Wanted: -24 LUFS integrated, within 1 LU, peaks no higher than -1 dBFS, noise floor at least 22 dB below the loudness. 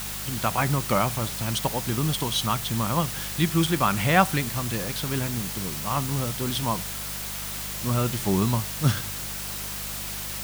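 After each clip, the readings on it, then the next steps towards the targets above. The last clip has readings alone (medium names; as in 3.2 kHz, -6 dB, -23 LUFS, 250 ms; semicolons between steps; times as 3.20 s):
hum 50 Hz; highest harmonic 200 Hz; hum level -39 dBFS; noise floor -33 dBFS; noise floor target -48 dBFS; loudness -25.5 LUFS; peak level -5.5 dBFS; loudness target -24.0 LUFS
-> de-hum 50 Hz, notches 4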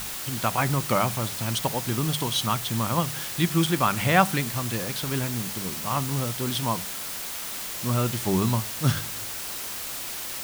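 hum not found; noise floor -34 dBFS; noise floor target -48 dBFS
-> noise print and reduce 14 dB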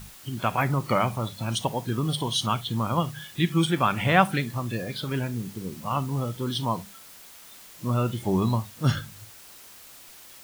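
noise floor -48 dBFS; noise floor target -49 dBFS
-> noise print and reduce 6 dB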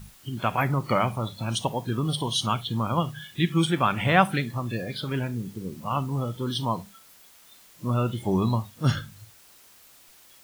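noise floor -54 dBFS; loudness -27.0 LUFS; peak level -5.5 dBFS; loudness target -24.0 LUFS
-> trim +3 dB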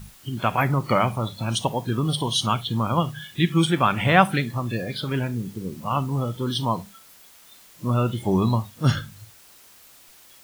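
loudness -24.0 LUFS; peak level -2.5 dBFS; noise floor -51 dBFS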